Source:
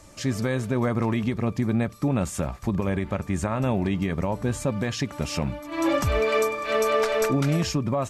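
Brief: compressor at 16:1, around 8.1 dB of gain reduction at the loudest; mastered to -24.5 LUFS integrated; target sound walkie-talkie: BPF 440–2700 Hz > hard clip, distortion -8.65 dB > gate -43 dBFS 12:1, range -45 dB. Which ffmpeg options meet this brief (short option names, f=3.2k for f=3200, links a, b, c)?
-af "acompressor=threshold=-27dB:ratio=16,highpass=440,lowpass=2.7k,asoftclip=type=hard:threshold=-34.5dB,agate=range=-45dB:threshold=-43dB:ratio=12,volume=15.5dB"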